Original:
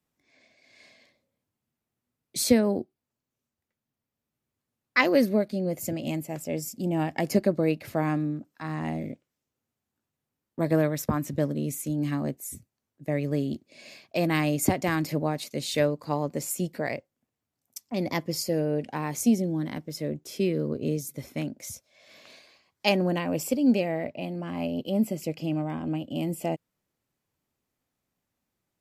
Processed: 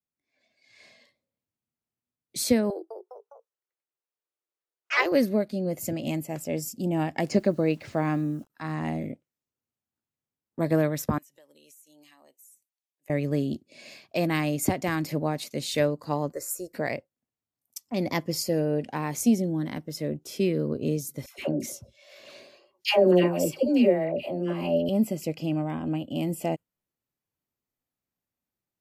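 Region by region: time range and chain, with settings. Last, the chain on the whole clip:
2.7–5.12 rippled Chebyshev high-pass 320 Hz, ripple 3 dB + echoes that change speed 0.204 s, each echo +2 st, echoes 3, each echo -6 dB
7.27–8.5 LPF 7200 Hz 24 dB/oct + requantised 10-bit, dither none
11.18–13.1 HPF 1100 Hz + bell 1400 Hz -12 dB 0.66 oct + compressor, threshold -54 dBFS
16.32–16.74 bell 150 Hz -14.5 dB 0.84 oct + fixed phaser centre 840 Hz, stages 6
21.26–24.89 doubler 17 ms -11 dB + small resonant body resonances 380/560/2800 Hz, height 12 dB, ringing for 65 ms + dispersion lows, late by 0.125 s, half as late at 920 Hz
whole clip: spectral noise reduction 10 dB; AGC gain up to 8 dB; gain -7 dB

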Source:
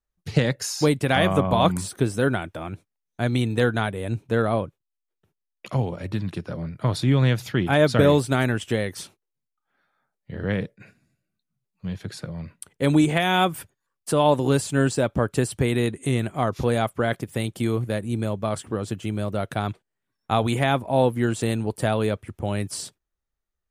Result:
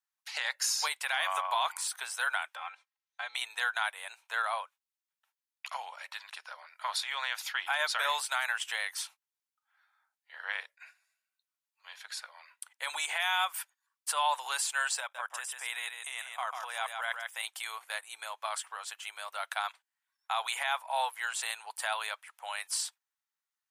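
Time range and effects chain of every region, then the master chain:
2.55–3.35 LPF 4600 Hz + comb 3.8 ms, depth 99% + compressor 2:1, threshold -30 dBFS
15–17.43 Butterworth band-stop 4300 Hz, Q 5.3 + level quantiser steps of 13 dB + echo 0.145 s -5.5 dB
whole clip: steep high-pass 860 Hz 36 dB/oct; notch 1200 Hz, Q 16; limiter -19 dBFS

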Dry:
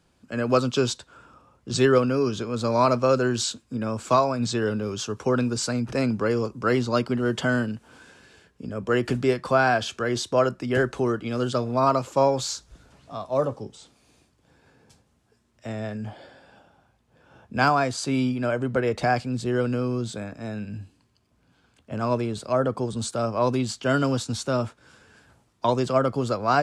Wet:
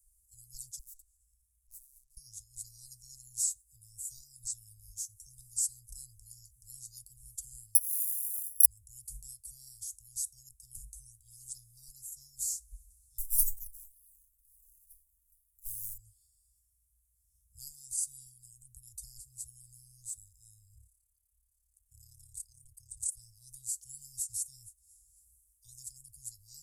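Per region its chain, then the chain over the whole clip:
0.79–2.17 tube stage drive 36 dB, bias 0.6 + compressor, threshold -51 dBFS
7.75–8.66 LPF 2800 Hz + careless resampling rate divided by 8×, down none, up zero stuff
13.18–15.98 minimum comb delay 0.36 ms + comb 7 ms, depth 62% + decimation with a swept rate 8×, swing 60% 2.1 Hz
20.75–23.17 AM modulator 35 Hz, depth 50% + notch 4200 Hz, Q 24
whole clip: inverse Chebyshev band-stop 240–2500 Hz, stop band 80 dB; bell 6800 Hz +13.5 dB 2.8 oct; gain +6 dB

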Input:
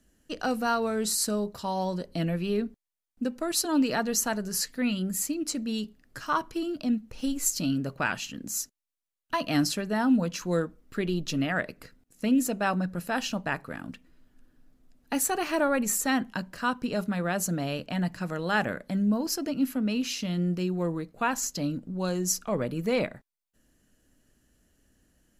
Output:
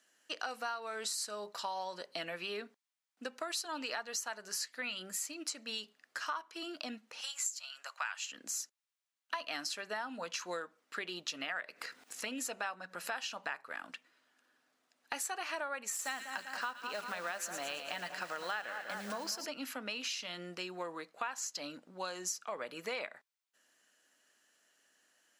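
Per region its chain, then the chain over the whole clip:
7.21–8.32 HPF 840 Hz 24 dB/oct + bell 7200 Hz +9.5 dB 0.23 oct
11.42–13.61 notch 620 Hz, Q 17 + upward compressor, threshold -29 dBFS
15.92–19.46 block floating point 5-bit + split-band echo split 1600 Hz, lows 0.196 s, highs 0.111 s, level -10 dB
whole clip: HPF 890 Hz 12 dB/oct; bell 14000 Hz -13.5 dB 0.79 oct; compressor 6:1, threshold -40 dBFS; gain +4 dB

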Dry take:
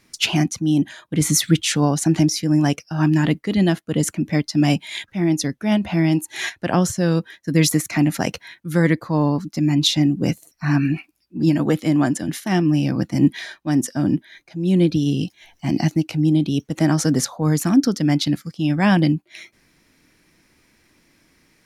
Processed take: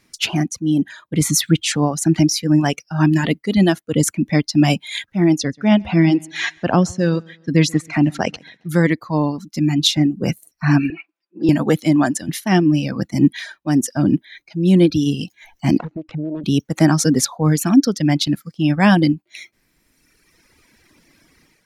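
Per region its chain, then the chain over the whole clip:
5.38–8.69 air absorption 92 m + feedback echo 0.135 s, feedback 37%, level -16 dB
10.9–11.49 BPF 430–2500 Hz + comb 5.9 ms, depth 77%
15.78–16.44 self-modulated delay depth 0.51 ms + LPF 1600 Hz + compressor 3:1, threshold -28 dBFS
whole clip: reverb removal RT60 1.7 s; AGC gain up to 8 dB; gain -1 dB

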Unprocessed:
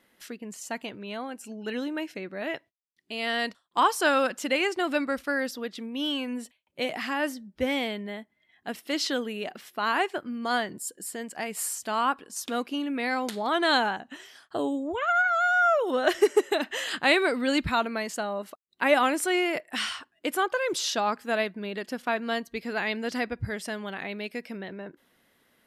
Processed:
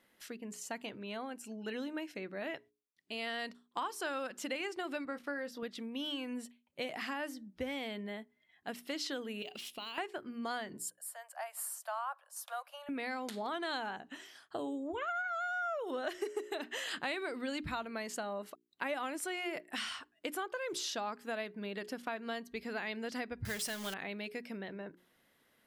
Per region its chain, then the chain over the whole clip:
5.05–5.63 HPF 150 Hz + high shelf 3700 Hz -9 dB + doubler 21 ms -10 dB
9.42–9.98 resonant high shelf 2200 Hz +8 dB, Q 3 + compressor 12:1, threshold -34 dBFS + decimation joined by straight lines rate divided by 2×
10.9–12.89 steep high-pass 560 Hz 96 dB/oct + band shelf 3800 Hz -9.5 dB 2.3 oct
23.45–23.94 zero-crossing step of -37.5 dBFS + short-mantissa float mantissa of 2-bit + high shelf 2300 Hz +11.5 dB
whole clip: notches 60/120/180/240/300/360/420 Hz; compressor 4:1, threshold -31 dBFS; gain -5 dB

